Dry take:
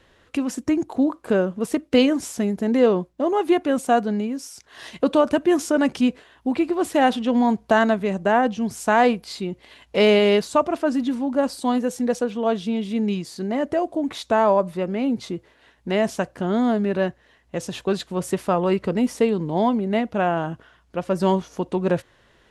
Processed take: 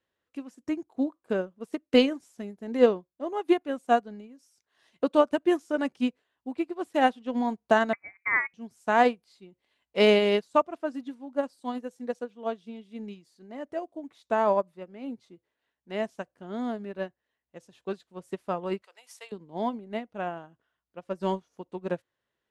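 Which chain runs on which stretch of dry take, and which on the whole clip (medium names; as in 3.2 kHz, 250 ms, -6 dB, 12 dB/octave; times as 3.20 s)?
7.93–8.54 s: self-modulated delay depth 0.053 ms + high-pass 410 Hz 24 dB/octave + frequency inversion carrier 2.7 kHz
18.82–19.32 s: high-pass 680 Hz 24 dB/octave + treble shelf 2 kHz +11.5 dB
whole clip: high-pass 140 Hz 6 dB/octave; upward expansion 2.5:1, over -30 dBFS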